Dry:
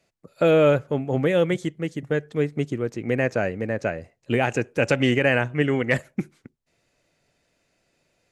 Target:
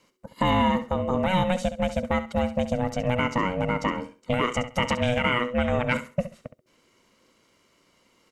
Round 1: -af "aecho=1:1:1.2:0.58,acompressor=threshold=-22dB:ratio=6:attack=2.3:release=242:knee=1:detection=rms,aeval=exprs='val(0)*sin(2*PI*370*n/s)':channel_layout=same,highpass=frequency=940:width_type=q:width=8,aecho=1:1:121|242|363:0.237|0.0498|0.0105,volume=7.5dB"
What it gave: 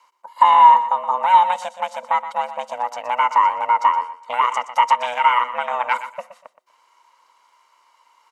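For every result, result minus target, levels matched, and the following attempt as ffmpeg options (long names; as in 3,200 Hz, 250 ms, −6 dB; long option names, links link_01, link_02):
echo 54 ms late; 1,000 Hz band +6.5 dB
-af "aecho=1:1:1.2:0.58,acompressor=threshold=-22dB:ratio=6:attack=2.3:release=242:knee=1:detection=rms,aeval=exprs='val(0)*sin(2*PI*370*n/s)':channel_layout=same,highpass=frequency=940:width_type=q:width=8,aecho=1:1:67|134|201:0.237|0.0498|0.0105,volume=7.5dB"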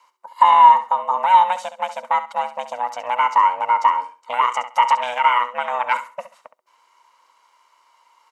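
1,000 Hz band +6.5 dB
-af "aecho=1:1:1.2:0.58,acompressor=threshold=-22dB:ratio=6:attack=2.3:release=242:knee=1:detection=rms,aeval=exprs='val(0)*sin(2*PI*370*n/s)':channel_layout=same,aecho=1:1:67|134|201:0.237|0.0498|0.0105,volume=7.5dB"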